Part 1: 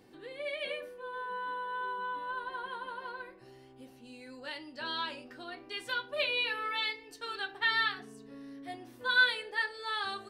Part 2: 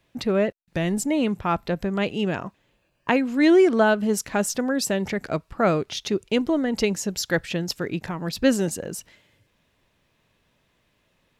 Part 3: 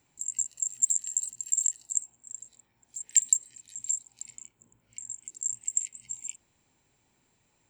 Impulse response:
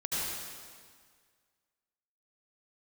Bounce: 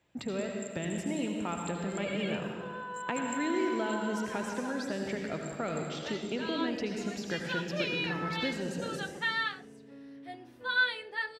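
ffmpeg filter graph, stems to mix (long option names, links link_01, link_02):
-filter_complex "[0:a]adelay=1600,volume=-1.5dB[link_01];[1:a]highshelf=frequency=9400:gain=-9,acrossover=split=110|2500[link_02][link_03][link_04];[link_02]acompressor=threshold=-53dB:ratio=4[link_05];[link_03]acompressor=threshold=-29dB:ratio=4[link_06];[link_04]acompressor=threshold=-38dB:ratio=4[link_07];[link_05][link_06][link_07]amix=inputs=3:normalize=0,volume=-8.5dB,asplit=3[link_08][link_09][link_10];[link_09]volume=-4dB[link_11];[2:a]volume=-9dB,asplit=2[link_12][link_13];[link_13]volume=-20dB[link_14];[link_10]apad=whole_len=339269[link_15];[link_12][link_15]sidechaincompress=threshold=-45dB:ratio=8:attack=16:release=390[link_16];[3:a]atrim=start_sample=2205[link_17];[link_11][link_14]amix=inputs=2:normalize=0[link_18];[link_18][link_17]afir=irnorm=-1:irlink=0[link_19];[link_01][link_08][link_16][link_19]amix=inputs=4:normalize=0,highpass=59,highshelf=frequency=6500:gain=-10,bandreject=frequency=1100:width=18"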